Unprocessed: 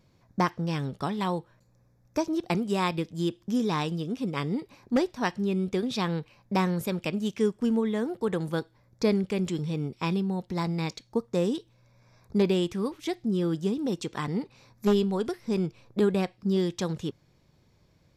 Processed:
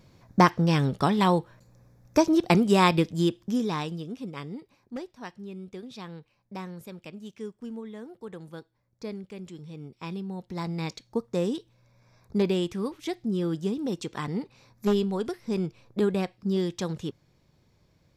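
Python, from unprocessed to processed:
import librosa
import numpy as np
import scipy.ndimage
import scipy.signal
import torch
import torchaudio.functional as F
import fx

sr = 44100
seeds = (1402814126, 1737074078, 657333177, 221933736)

y = fx.gain(x, sr, db=fx.line((3.04, 7.0), (3.64, -1.0), (5.0, -12.5), (9.59, -12.5), (10.9, -1.0)))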